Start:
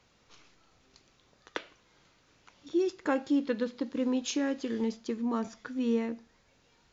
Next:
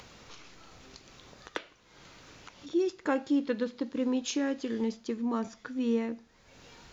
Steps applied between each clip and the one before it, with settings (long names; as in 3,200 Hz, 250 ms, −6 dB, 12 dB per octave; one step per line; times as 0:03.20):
upward compression, threshold −40 dBFS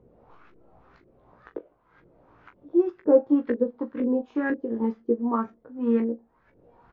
auto-filter low-pass saw up 2 Hz 340–1,800 Hz
ambience of single reflections 17 ms −5.5 dB, 40 ms −12.5 dB
expander for the loud parts 1.5 to 1, over −39 dBFS
level +5.5 dB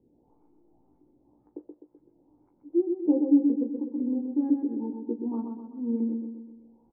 formant resonators in series u
on a send: repeating echo 127 ms, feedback 51%, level −5 dB
on the sum: level +2 dB